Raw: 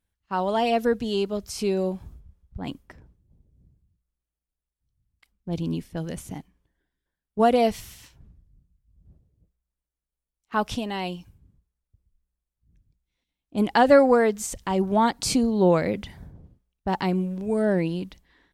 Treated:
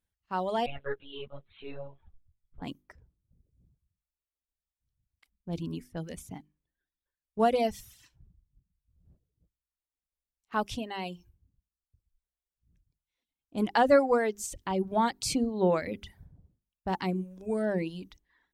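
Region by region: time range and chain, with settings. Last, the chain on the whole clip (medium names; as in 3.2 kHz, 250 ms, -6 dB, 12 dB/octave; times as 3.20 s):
0.66–2.62 s: peaking EQ 240 Hz -13 dB 1.6 oct + monotone LPC vocoder at 8 kHz 140 Hz + three-phase chorus
whole clip: hum notches 50/100/150/200/250/300/350/400 Hz; reverb removal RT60 0.85 s; trim -5 dB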